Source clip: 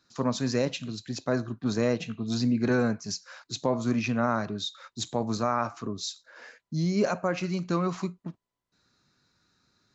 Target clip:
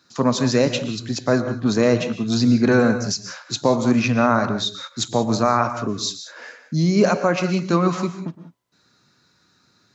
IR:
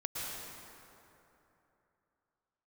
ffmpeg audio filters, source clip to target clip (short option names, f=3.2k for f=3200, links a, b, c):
-filter_complex "[0:a]highpass=100,asplit=2[a][b];[1:a]atrim=start_sample=2205,afade=t=out:st=0.25:d=0.01,atrim=end_sample=11466[c];[b][c]afir=irnorm=-1:irlink=0,volume=-5dB[d];[a][d]amix=inputs=2:normalize=0,volume=6dB"